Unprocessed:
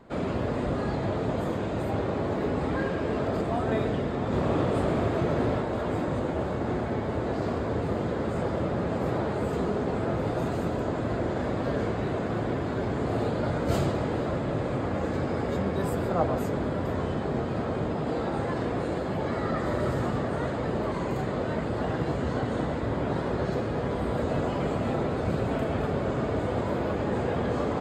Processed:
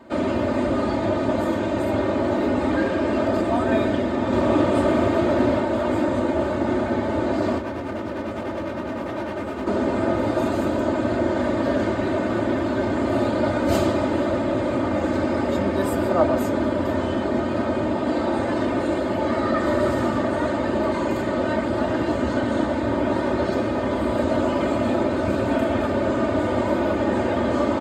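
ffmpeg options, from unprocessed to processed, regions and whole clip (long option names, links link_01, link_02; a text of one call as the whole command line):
ffmpeg -i in.wav -filter_complex "[0:a]asettb=1/sr,asplit=3[link_01][link_02][link_03];[link_01]atrim=end=7.584[link_04];[link_02]atrim=start=7.58:end=9.67,asetpts=PTS-STARTPTS,afade=type=in:duration=0.004:curve=qsin,afade=type=out:start_time=2.086:duration=0.004:curve=qsin,acrossover=split=3500[link_05][link_06];[link_06]acompressor=threshold=-60dB:ratio=4:attack=1:release=60[link_07];[link_05][link_07]amix=inputs=2:normalize=0,tremolo=f=9.9:d=0.55,asoftclip=type=hard:threshold=-32dB[link_08];[link_03]atrim=start=9.666[link_09];[link_04][link_08]acrossfade=duration=0.004:curve1=hsin:curve2=qsin[link_10];[link_10][link_09]acrossfade=duration=0.004:curve1=qsin:curve2=hsin,highpass=90,aecho=1:1:3.3:0.8,volume=5dB" out.wav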